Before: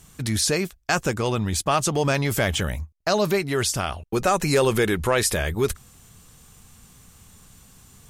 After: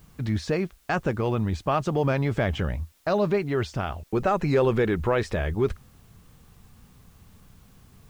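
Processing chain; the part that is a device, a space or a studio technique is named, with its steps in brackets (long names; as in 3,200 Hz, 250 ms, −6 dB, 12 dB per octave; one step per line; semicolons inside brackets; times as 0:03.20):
cassette deck with a dirty head (head-to-tape spacing loss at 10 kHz 32 dB; tape wow and flutter; white noise bed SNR 37 dB)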